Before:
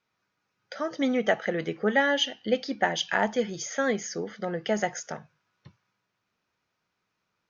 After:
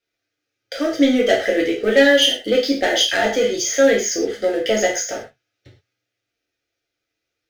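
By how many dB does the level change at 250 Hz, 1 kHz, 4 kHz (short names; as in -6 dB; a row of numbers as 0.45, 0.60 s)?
+10.0, +3.5, +13.0 dB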